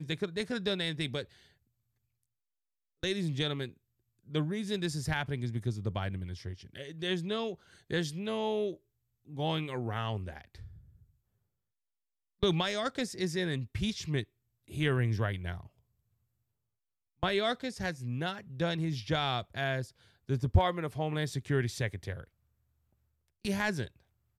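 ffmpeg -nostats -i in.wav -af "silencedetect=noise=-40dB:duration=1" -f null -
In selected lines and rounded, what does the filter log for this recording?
silence_start: 1.23
silence_end: 3.03 | silence_duration: 1.80
silence_start: 10.65
silence_end: 12.43 | silence_duration: 1.78
silence_start: 15.61
silence_end: 17.23 | silence_duration: 1.62
silence_start: 22.24
silence_end: 23.45 | silence_duration: 1.21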